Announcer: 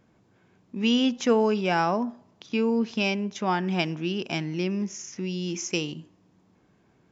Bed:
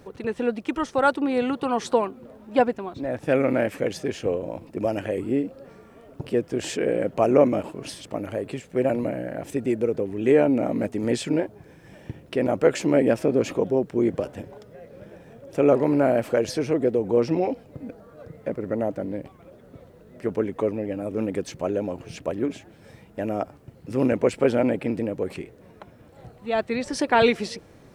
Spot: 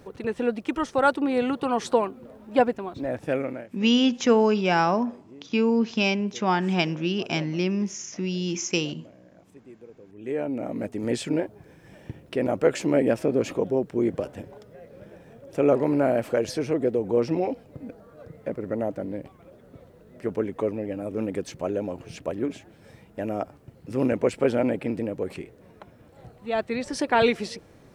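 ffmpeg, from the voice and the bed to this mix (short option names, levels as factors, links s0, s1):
-filter_complex "[0:a]adelay=3000,volume=1.33[s0];[1:a]volume=11.2,afade=t=out:st=3.08:d=0.59:silence=0.0707946,afade=t=in:st=10.02:d=1.17:silence=0.0841395[s1];[s0][s1]amix=inputs=2:normalize=0"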